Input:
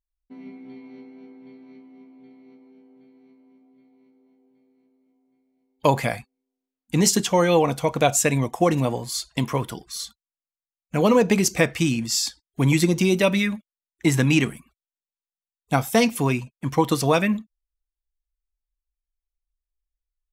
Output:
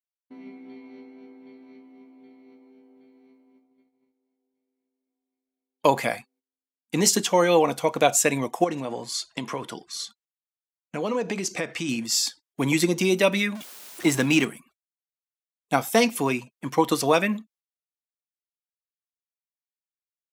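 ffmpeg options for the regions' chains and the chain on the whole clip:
-filter_complex "[0:a]asettb=1/sr,asplit=3[a][b][c];[a]atrim=end=8.644[d];[b]atrim=start=8.64:end=11.89,asetpts=PTS-STARTPTS,afade=t=in:d=0.004:c=qsin,afade=t=out:st=3.246:d=0.004:c=qsin,lowpass=8.2k,acompressor=threshold=-23dB:ratio=4:attack=3.2:release=140:knee=1:detection=peak[e];[c]atrim=start=11.886[f];[d][e]acrossfade=d=0.004:c1=hsin:c2=qsin[g];[g][f]acrossfade=d=0.004:c1=qsin:c2=hsin,asettb=1/sr,asplit=3[h][i][j];[h]atrim=end=13.554[k];[i]atrim=start=13.55:end=14.45,asetpts=PTS-STARTPTS,afade=t=in:d=0.004:c=qsin,afade=t=out:st=0.896:d=0.004:c=qsin,aeval=exprs='val(0)+0.5*0.0251*sgn(val(0))':c=same,equalizer=f=1.9k:t=o:w=0.23:g=-2.5[l];[j]atrim=start=14.446[m];[k][l]acrossfade=d=0.004:c1=hsin:c2=qsin[n];[n][m]acrossfade=d=0.004:c1=qsin:c2=hsin,highpass=240,agate=range=-16dB:threshold=-58dB:ratio=16:detection=peak"

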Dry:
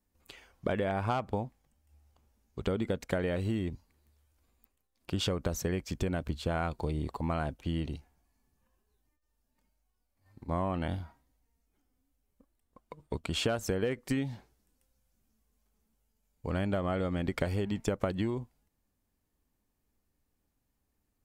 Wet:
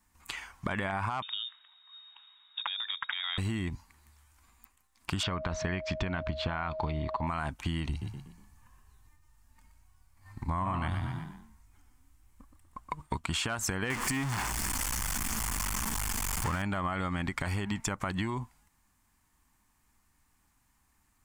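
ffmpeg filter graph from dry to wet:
-filter_complex "[0:a]asettb=1/sr,asplit=3[a][b][c];[a]atrim=end=1.224[d];[b]atrim=start=1.22:end=3.38,asetpts=PTS-STARTPTS,afade=t=in:d=0.004:c=qsin,afade=t=out:st=2.156:d=0.004:c=qsin,acompressor=threshold=-42dB:ratio=8:attack=3.2:release=140:knee=1:detection=peak,equalizer=f=2.6k:t=o:w=0.79:g=7.5,lowpass=f=3.2k:t=q:w=0.5098,lowpass=f=3.2k:t=q:w=0.6013,lowpass=f=3.2k:t=q:w=0.9,lowpass=f=3.2k:t=q:w=2.563,afreqshift=-3800[e];[c]atrim=start=3.376[f];[d][e]acrossfade=d=0.004:c1=hsin:c2=qsin[g];[g][f]acrossfade=d=0.004:c1=qsin:c2=hsin,asettb=1/sr,asplit=3[h][i][j];[h]atrim=end=5.234[k];[i]atrim=start=5.23:end=7.27,asetpts=PTS-STARTPTS,afade=t=in:d=0.004:c=qsin,afade=t=out:st=2.036:d=0.004:c=qsin,lowpass=f=4.4k:w=0.5412,lowpass=f=4.4k:w=1.3066,aeval=exprs='val(0)+0.0158*sin(2*PI*630*n/s)':c=same[l];[j]atrim=start=7.266[m];[k][l]acrossfade=d=0.004:c1=hsin:c2=qsin[n];[n][m]acrossfade=d=0.004:c1=qsin:c2=hsin,asettb=1/sr,asplit=3[o][p][q];[o]atrim=end=7.894[r];[p]atrim=start=7.89:end=13.02,asetpts=PTS-STARTPTS,afade=t=in:d=0.004:c=qsin,afade=t=out:st=5.126:d=0.004:c=qsin,lowshelf=f=93:g=11,asplit=5[s][t][u][v][w];[t]adelay=121,afreqshift=32,volume=-8dB[x];[u]adelay=242,afreqshift=64,volume=-16.6dB[y];[v]adelay=363,afreqshift=96,volume=-25.3dB[z];[w]adelay=484,afreqshift=128,volume=-33.9dB[aa];[s][x][y][z][aa]amix=inputs=5:normalize=0,atrim=end_sample=226233[ab];[q]atrim=start=13.016[ac];[r][ab]acrossfade=d=0.004:c1=hsin:c2=qsin[ad];[ad][ac]acrossfade=d=0.004:c1=qsin:c2=hsin,asettb=1/sr,asplit=3[ae][af][ag];[ae]atrim=end=13.904[ah];[af]atrim=start=13.9:end=16.62,asetpts=PTS-STARTPTS,afade=t=in:d=0.004:c=qsin,afade=t=out:st=2.716:d=0.004:c=qsin,aeval=exprs='val(0)+0.5*0.0224*sgn(val(0))':c=same,bandreject=f=3.9k:w=9.3[ai];[ag]atrim=start=16.616[aj];[ah][ai]acrossfade=d=0.004:c1=hsin:c2=qsin[ak];[ak][aj]acrossfade=d=0.004:c1=qsin:c2=hsin,equalizer=f=500:t=o:w=1:g=-12,equalizer=f=1k:t=o:w=1:g=11,equalizer=f=2k:t=o:w=1:g=6,equalizer=f=8k:t=o:w=1:g=8,alimiter=limit=-22dB:level=0:latency=1,acompressor=threshold=-36dB:ratio=6,volume=7dB"

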